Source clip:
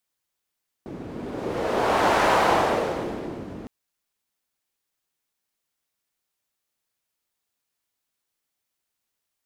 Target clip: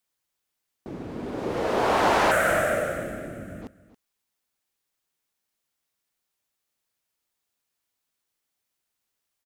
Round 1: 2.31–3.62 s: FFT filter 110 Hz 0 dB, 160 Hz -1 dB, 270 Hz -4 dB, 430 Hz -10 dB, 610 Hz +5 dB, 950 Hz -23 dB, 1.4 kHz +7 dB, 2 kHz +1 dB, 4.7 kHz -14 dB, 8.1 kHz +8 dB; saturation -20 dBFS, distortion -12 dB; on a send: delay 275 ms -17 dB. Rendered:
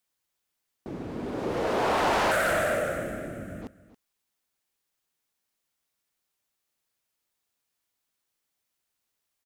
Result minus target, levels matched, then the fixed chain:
saturation: distortion +15 dB
2.31–3.62 s: FFT filter 110 Hz 0 dB, 160 Hz -1 dB, 270 Hz -4 dB, 430 Hz -10 dB, 610 Hz +5 dB, 950 Hz -23 dB, 1.4 kHz +7 dB, 2 kHz +1 dB, 4.7 kHz -14 dB, 8.1 kHz +8 dB; saturation -8.5 dBFS, distortion -27 dB; on a send: delay 275 ms -17 dB

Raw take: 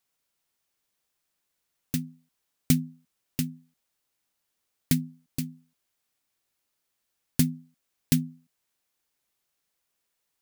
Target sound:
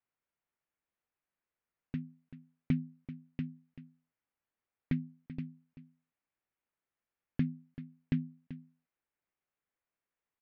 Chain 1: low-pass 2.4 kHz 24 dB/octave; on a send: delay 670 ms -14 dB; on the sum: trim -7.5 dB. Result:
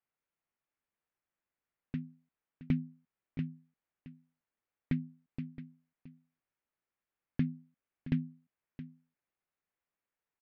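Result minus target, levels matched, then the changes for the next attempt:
echo 284 ms late
change: delay 386 ms -14 dB

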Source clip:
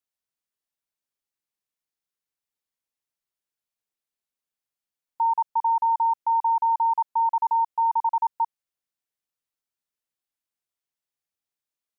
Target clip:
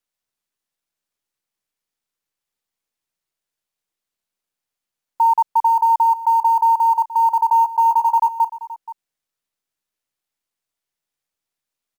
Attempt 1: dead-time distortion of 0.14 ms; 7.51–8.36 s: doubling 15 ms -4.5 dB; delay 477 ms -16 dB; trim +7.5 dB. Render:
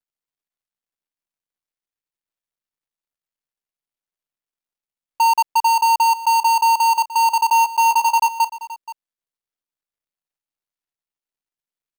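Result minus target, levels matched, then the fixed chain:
dead-time distortion: distortion +23 dB
dead-time distortion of 0.028 ms; 7.51–8.36 s: doubling 15 ms -4.5 dB; delay 477 ms -16 dB; trim +7.5 dB

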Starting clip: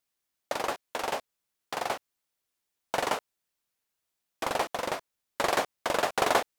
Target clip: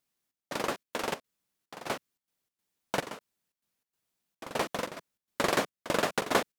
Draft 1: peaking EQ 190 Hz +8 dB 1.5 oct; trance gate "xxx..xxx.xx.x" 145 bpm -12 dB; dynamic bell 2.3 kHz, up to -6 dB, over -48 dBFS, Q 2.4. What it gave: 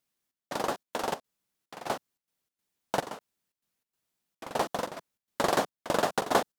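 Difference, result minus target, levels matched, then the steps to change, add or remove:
2 kHz band -3.0 dB
change: dynamic bell 780 Hz, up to -6 dB, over -48 dBFS, Q 2.4

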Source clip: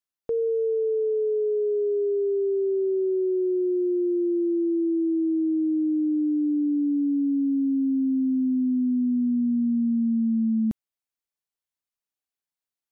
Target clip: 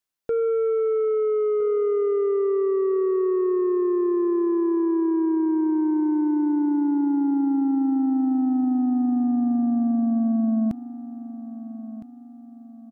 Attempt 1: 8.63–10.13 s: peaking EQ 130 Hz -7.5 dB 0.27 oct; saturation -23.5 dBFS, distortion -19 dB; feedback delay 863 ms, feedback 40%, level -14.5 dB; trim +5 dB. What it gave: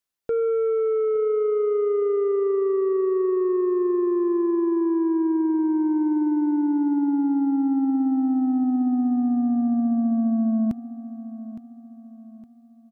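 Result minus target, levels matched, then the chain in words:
echo 448 ms early
8.63–10.13 s: peaking EQ 130 Hz -7.5 dB 0.27 oct; saturation -23.5 dBFS, distortion -19 dB; feedback delay 1311 ms, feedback 40%, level -14.5 dB; trim +5 dB

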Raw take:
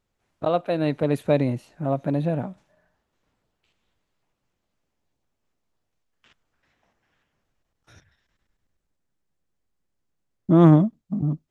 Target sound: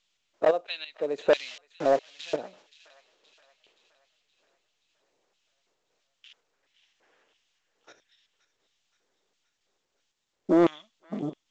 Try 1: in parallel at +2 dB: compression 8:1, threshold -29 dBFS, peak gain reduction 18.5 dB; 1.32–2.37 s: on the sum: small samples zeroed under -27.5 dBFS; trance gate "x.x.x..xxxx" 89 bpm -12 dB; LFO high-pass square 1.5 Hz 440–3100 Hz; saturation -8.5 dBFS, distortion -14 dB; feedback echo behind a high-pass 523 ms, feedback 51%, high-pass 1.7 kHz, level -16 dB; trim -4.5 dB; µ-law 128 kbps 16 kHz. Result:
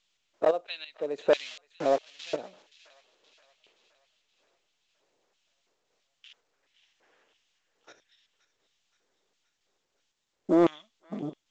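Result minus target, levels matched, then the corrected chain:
compression: peak gain reduction +8.5 dB
in parallel at +2 dB: compression 8:1, threshold -19.5 dBFS, peak gain reduction 10.5 dB; 1.32–2.37 s: on the sum: small samples zeroed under -27.5 dBFS; trance gate "x.x.x..xxxx" 89 bpm -12 dB; LFO high-pass square 1.5 Hz 440–3100 Hz; saturation -8.5 dBFS, distortion -12 dB; feedback echo behind a high-pass 523 ms, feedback 51%, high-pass 1.7 kHz, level -16 dB; trim -4.5 dB; µ-law 128 kbps 16 kHz

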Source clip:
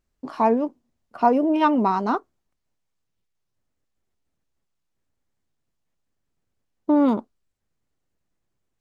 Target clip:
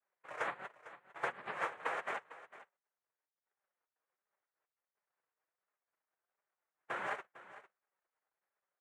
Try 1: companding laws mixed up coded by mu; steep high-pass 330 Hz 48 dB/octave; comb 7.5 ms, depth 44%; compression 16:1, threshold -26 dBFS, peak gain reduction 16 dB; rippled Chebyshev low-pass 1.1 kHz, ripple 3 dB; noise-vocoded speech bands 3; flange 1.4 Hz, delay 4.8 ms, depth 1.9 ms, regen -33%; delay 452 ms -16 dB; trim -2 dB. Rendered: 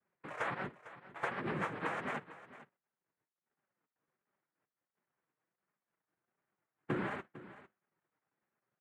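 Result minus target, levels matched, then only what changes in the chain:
250 Hz band +14.0 dB
change: steep high-pass 670 Hz 48 dB/octave

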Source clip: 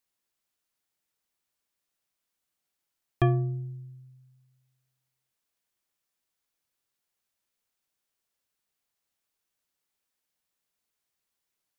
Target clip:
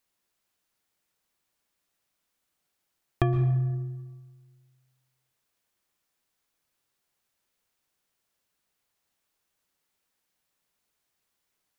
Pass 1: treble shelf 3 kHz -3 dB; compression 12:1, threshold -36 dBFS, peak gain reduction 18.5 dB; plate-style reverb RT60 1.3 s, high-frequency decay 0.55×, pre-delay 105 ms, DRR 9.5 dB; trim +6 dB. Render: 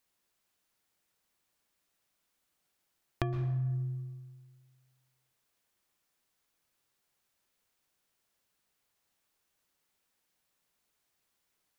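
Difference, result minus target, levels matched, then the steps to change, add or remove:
compression: peak gain reduction +9 dB
change: compression 12:1, threshold -26 dBFS, peak gain reduction 9 dB

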